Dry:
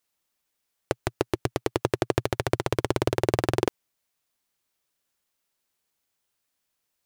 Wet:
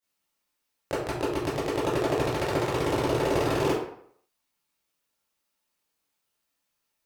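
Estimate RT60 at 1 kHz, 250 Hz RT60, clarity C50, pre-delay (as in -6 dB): 0.65 s, 0.60 s, 1.5 dB, 17 ms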